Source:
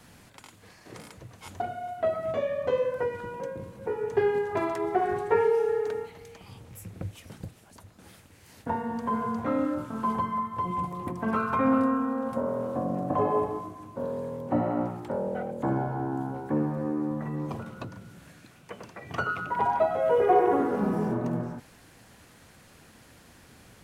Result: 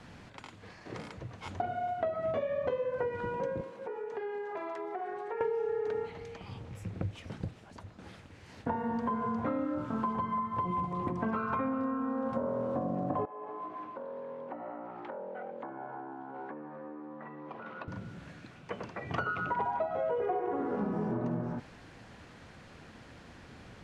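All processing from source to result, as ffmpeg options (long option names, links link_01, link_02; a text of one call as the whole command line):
ffmpeg -i in.wav -filter_complex "[0:a]asettb=1/sr,asplit=3[link_01][link_02][link_03];[link_01]atrim=end=3.614[link_04];[link_02]atrim=start=3.61:end=5.41,asetpts=PTS-STARTPTS,afade=type=in:duration=0.004:curve=qsin,afade=type=out:start_time=1.796:duration=0.004:curve=qsin,highpass=390,acompressor=threshold=-40dB:ratio=4:attack=3.2:release=140:knee=1:detection=peak[link_05];[link_03]atrim=start=5.406[link_06];[link_04][link_05]acrossfade=duration=0.004:curve1=hsin:curve2=qsin[link_07];[link_07][link_06]acrossfade=duration=0.004:curve1=qsin:curve2=hsin,asettb=1/sr,asplit=3[link_08][link_09][link_10];[link_08]atrim=end=13.254[link_11];[link_09]atrim=start=13.25:end=17.88,asetpts=PTS-STARTPTS,afade=type=in:duration=0.004:curve=qsin,afade=type=out:start_time=4.626:duration=0.004:curve=qsin,acompressor=threshold=-38dB:ratio=16:attack=3.2:release=140:knee=1:detection=peak,highpass=260,lowpass=2600,tiltshelf=frequency=650:gain=-5.5[link_12];[link_10]atrim=start=17.876[link_13];[link_11][link_12]acrossfade=duration=0.004:curve1=hsin:curve2=qsin[link_14];[link_14][link_13]acrossfade=duration=0.004:curve1=qsin:curve2=hsin,lowpass=6100,highshelf=frequency=4700:gain=-8.5,acompressor=threshold=-32dB:ratio=12,volume=3dB" out.wav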